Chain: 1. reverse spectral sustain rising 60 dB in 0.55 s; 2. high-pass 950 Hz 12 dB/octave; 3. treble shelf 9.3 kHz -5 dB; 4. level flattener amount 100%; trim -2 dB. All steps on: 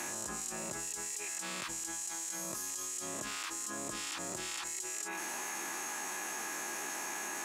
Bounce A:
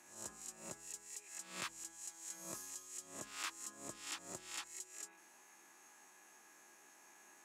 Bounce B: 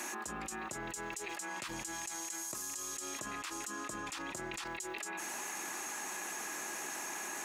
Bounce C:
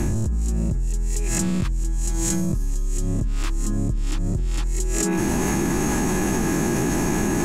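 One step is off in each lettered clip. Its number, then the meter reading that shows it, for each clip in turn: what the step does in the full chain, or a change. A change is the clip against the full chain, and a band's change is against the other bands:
4, crest factor change +6.0 dB; 1, 8 kHz band -4.0 dB; 2, 125 Hz band +24.0 dB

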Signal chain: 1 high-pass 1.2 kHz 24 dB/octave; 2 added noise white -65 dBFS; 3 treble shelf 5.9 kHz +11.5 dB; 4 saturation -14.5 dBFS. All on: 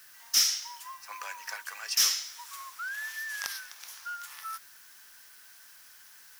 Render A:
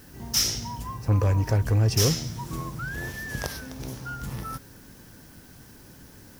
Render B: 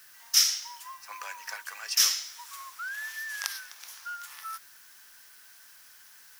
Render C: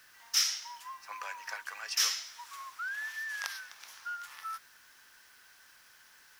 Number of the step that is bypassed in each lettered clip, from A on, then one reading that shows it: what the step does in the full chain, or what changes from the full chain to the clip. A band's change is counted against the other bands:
1, 500 Hz band +26.0 dB; 4, distortion -15 dB; 3, 8 kHz band -4.5 dB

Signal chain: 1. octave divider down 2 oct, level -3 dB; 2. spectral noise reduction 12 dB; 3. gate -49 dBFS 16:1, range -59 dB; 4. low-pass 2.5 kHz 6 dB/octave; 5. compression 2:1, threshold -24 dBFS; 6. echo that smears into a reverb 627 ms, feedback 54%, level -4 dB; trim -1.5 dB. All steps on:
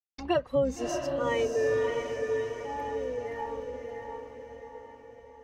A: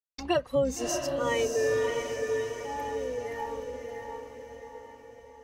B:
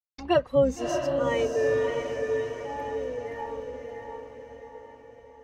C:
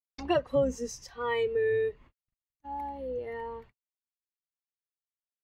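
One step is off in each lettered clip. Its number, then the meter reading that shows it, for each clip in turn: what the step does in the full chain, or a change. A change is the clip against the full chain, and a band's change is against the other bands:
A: 4, 8 kHz band +8.0 dB; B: 5, loudness change +3.5 LU; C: 6, echo-to-direct -2.5 dB to none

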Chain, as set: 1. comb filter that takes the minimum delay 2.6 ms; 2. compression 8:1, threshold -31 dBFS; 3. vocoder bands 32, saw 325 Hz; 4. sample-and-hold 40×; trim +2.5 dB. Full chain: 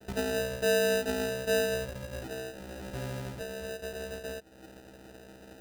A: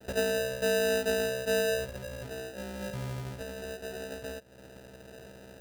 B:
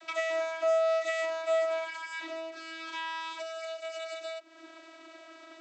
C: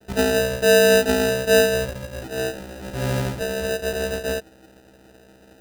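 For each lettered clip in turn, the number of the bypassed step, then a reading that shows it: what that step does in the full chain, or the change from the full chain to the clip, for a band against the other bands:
1, 250 Hz band -1.5 dB; 4, 250 Hz band -13.0 dB; 2, momentary loudness spread change -9 LU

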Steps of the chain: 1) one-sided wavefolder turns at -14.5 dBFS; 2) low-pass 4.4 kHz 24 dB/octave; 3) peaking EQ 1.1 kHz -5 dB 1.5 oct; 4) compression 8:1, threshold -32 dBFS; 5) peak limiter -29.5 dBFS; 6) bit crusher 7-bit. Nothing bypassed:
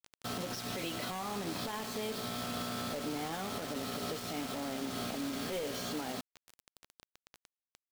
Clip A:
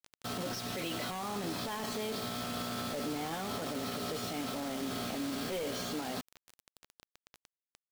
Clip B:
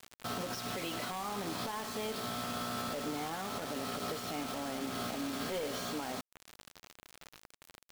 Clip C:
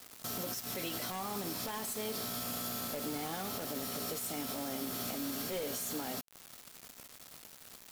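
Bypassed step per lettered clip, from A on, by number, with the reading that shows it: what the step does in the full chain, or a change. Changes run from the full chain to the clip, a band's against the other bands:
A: 4, mean gain reduction 6.5 dB; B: 3, momentary loudness spread change +17 LU; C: 2, 8 kHz band +6.5 dB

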